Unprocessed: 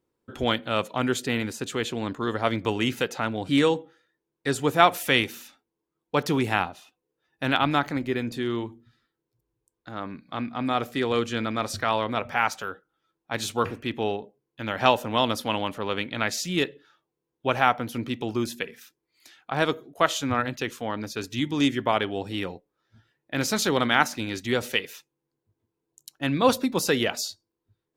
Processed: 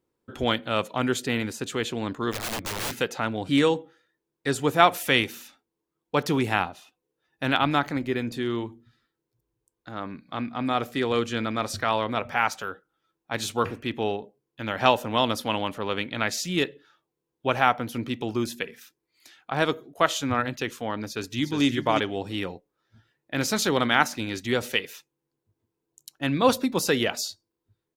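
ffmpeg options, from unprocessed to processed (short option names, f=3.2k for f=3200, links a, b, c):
-filter_complex "[0:a]asplit=3[a][b][c];[a]afade=t=out:st=2.31:d=0.02[d];[b]aeval=exprs='(mod(18.8*val(0)+1,2)-1)/18.8':c=same,afade=t=in:st=2.31:d=0.02,afade=t=out:st=2.97:d=0.02[e];[c]afade=t=in:st=2.97:d=0.02[f];[d][e][f]amix=inputs=3:normalize=0,asplit=2[g][h];[h]afade=t=in:st=21.06:d=0.01,afade=t=out:st=21.63:d=0.01,aecho=0:1:360|720:0.501187|0.0501187[i];[g][i]amix=inputs=2:normalize=0"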